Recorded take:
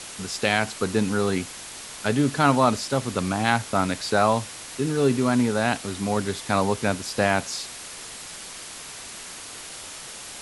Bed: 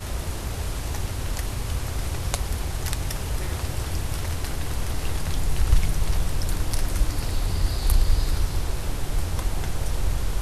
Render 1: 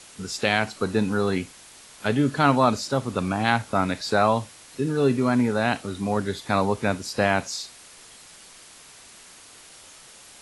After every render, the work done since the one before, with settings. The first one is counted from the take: noise print and reduce 9 dB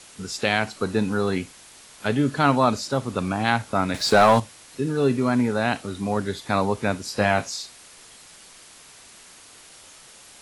3.94–4.4 sample leveller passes 2; 7.05–7.5 doubler 19 ms -7 dB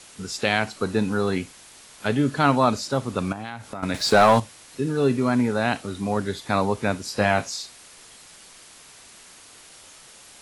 3.32–3.83 compressor 5:1, threshold -30 dBFS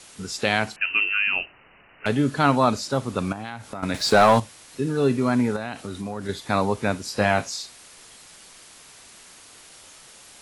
0.76–2.06 inverted band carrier 2900 Hz; 5.56–6.29 compressor 4:1, threshold -27 dBFS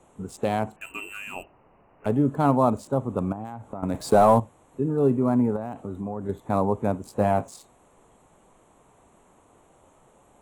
Wiener smoothing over 9 samples; band shelf 2900 Hz -15 dB 2.4 oct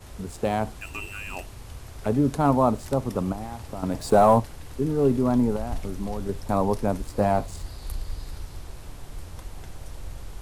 add bed -13 dB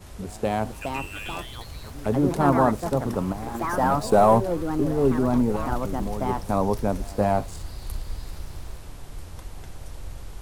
pre-echo 0.221 s -23 dB; echoes that change speed 0.507 s, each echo +4 st, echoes 2, each echo -6 dB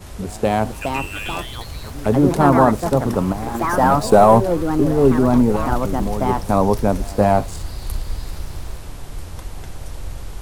gain +7 dB; limiter -1 dBFS, peak gain reduction 2.5 dB

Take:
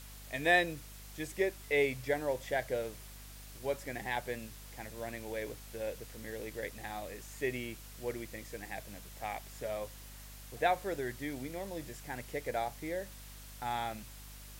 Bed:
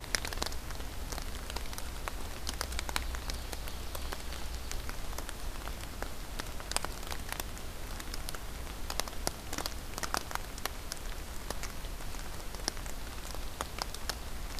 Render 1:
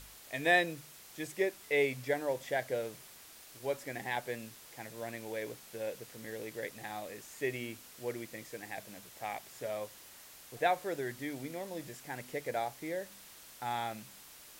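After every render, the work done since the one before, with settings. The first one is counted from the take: de-hum 50 Hz, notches 5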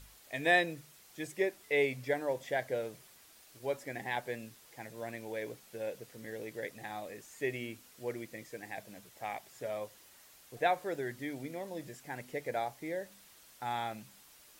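denoiser 6 dB, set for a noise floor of -54 dBFS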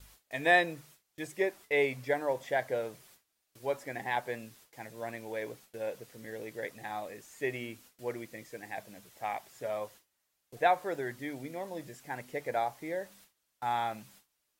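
gate with hold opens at -46 dBFS; dynamic EQ 1000 Hz, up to +6 dB, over -48 dBFS, Q 1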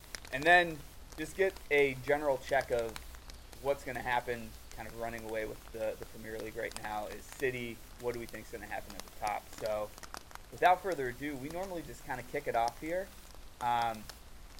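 add bed -12 dB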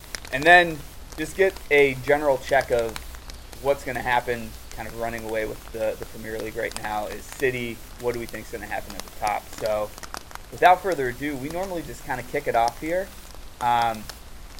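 gain +10.5 dB

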